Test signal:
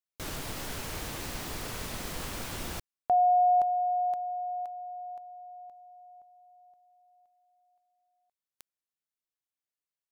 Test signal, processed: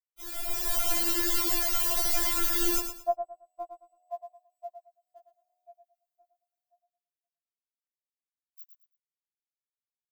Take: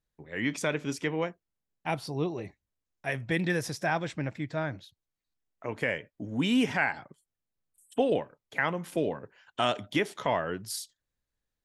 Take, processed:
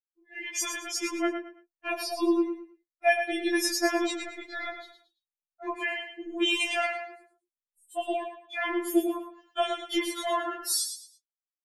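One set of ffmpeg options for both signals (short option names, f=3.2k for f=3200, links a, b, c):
-filter_complex "[0:a]aemphasis=mode=production:type=50kf,agate=range=-33dB:threshold=-56dB:ratio=3:release=213:detection=peak,afftdn=nr=18:nf=-44,equalizer=f=11k:t=o:w=0.96:g=-4.5,asplit=2[a][b];[b]acompressor=threshold=-34dB:ratio=6:attack=0.12:release=41:knee=6:detection=peak,volume=-3dB[c];[a][c]amix=inputs=2:normalize=0,alimiter=limit=-18dB:level=0:latency=1:release=96,dynaudnorm=f=100:g=11:m=16dB,flanger=delay=9.3:depth=1.1:regen=-10:speed=0.78:shape=sinusoidal,aecho=1:1:110|220|330:0.398|0.107|0.029,afftfilt=real='re*4*eq(mod(b,16),0)':imag='im*4*eq(mod(b,16),0)':win_size=2048:overlap=0.75,volume=-6dB"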